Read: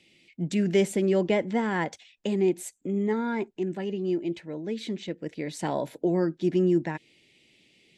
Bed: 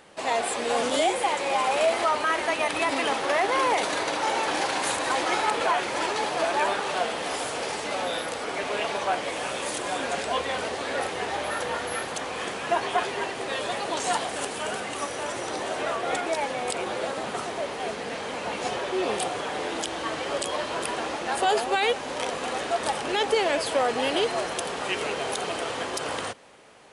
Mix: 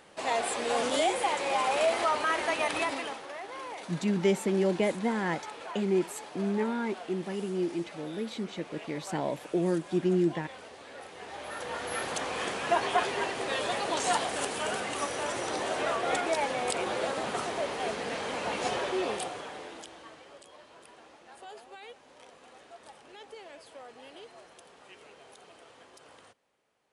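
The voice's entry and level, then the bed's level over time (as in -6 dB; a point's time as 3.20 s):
3.50 s, -3.0 dB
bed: 2.79 s -3.5 dB
3.30 s -17.5 dB
11.01 s -17.5 dB
12.09 s -1.5 dB
18.84 s -1.5 dB
20.43 s -24 dB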